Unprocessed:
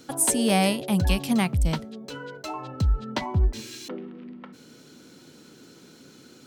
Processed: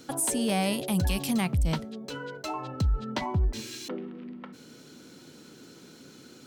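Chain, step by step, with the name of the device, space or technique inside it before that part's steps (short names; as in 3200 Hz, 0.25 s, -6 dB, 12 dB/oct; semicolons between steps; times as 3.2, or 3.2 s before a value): 0.73–1.41 high shelf 5500 Hz +7.5 dB; soft clipper into limiter (soft clip -10.5 dBFS, distortion -27 dB; limiter -19 dBFS, peak gain reduction 6.5 dB)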